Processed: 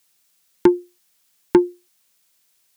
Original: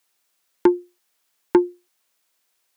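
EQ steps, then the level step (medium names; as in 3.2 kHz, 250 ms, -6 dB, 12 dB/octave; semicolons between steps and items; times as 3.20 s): peaking EQ 160 Hz +6.5 dB 0.73 oct; bass shelf 280 Hz +10.5 dB; treble shelf 2.1 kHz +10.5 dB; -3.0 dB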